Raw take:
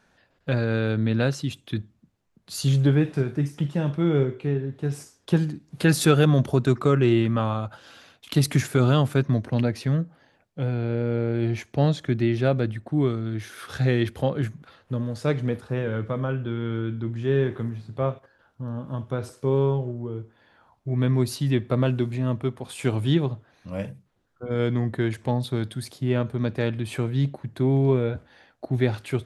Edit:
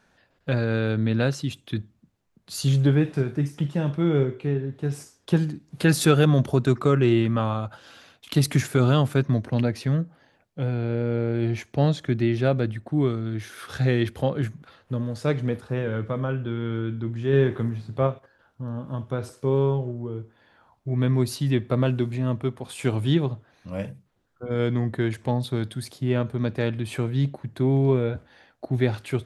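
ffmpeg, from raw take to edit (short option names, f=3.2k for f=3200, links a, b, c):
-filter_complex "[0:a]asplit=3[a][b][c];[a]atrim=end=17.332[d];[b]atrim=start=17.328:end=18.072,asetpts=PTS-STARTPTS,volume=3dB[e];[c]atrim=start=18.068[f];[d][e]acrossfade=d=0.004:c1=hsin:c2=hsin[g];[g][f]acrossfade=d=0.004:c1=hsin:c2=hsin"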